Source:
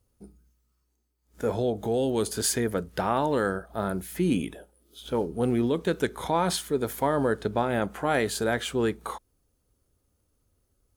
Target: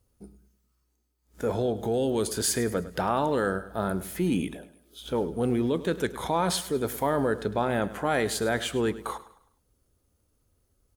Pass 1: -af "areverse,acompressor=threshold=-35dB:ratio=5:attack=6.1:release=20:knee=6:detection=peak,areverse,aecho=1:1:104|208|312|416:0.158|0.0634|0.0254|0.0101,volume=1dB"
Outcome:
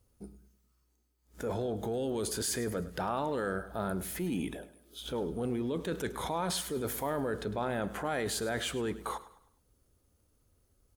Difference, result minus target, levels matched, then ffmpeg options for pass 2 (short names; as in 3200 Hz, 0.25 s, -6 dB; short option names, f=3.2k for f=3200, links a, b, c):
compressor: peak gain reduction +9 dB
-af "areverse,acompressor=threshold=-23.5dB:ratio=5:attack=6.1:release=20:knee=6:detection=peak,areverse,aecho=1:1:104|208|312|416:0.158|0.0634|0.0254|0.0101,volume=1dB"